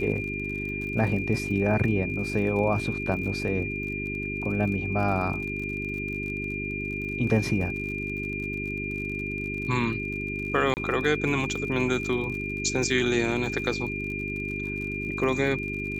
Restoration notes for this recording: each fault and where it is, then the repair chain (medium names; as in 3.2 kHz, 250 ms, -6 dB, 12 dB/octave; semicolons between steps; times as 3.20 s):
crackle 53 per s -35 dBFS
hum 50 Hz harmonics 8 -34 dBFS
whine 2.4 kHz -32 dBFS
10.74–10.77 s: dropout 29 ms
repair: de-click; de-hum 50 Hz, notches 8; band-stop 2.4 kHz, Q 30; interpolate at 10.74 s, 29 ms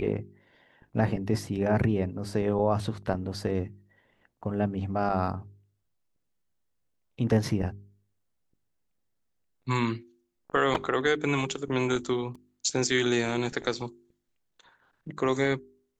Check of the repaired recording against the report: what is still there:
nothing left